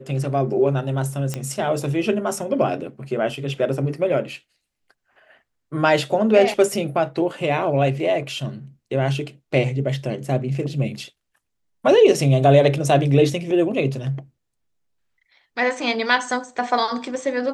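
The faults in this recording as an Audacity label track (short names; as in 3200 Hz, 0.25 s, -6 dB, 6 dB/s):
1.340000	1.340000	pop -11 dBFS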